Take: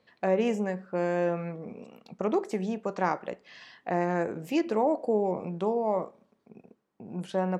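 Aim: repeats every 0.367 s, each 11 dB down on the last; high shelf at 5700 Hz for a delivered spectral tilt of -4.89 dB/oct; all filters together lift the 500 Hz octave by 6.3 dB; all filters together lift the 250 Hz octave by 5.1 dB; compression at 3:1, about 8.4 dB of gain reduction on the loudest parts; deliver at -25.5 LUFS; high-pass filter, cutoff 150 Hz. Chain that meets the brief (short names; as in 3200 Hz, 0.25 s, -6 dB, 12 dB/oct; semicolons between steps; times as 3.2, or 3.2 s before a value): HPF 150 Hz; bell 250 Hz +6 dB; bell 500 Hz +6 dB; high shelf 5700 Hz -4 dB; compressor 3:1, threshold -27 dBFS; feedback echo 0.367 s, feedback 28%, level -11 dB; gain +5.5 dB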